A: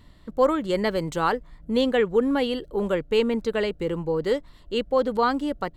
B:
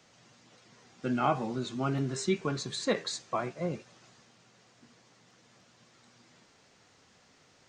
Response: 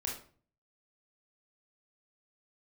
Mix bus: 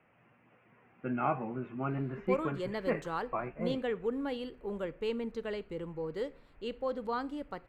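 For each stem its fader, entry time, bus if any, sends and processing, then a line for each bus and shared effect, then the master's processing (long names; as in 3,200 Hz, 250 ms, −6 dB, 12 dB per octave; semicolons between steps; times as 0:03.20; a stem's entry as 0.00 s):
−13.5 dB, 1.90 s, send −16.5 dB, high-shelf EQ 3,700 Hz −5 dB
−3.0 dB, 0.00 s, no send, elliptic low-pass filter 2,600 Hz, stop band 40 dB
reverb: on, RT60 0.45 s, pre-delay 22 ms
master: no processing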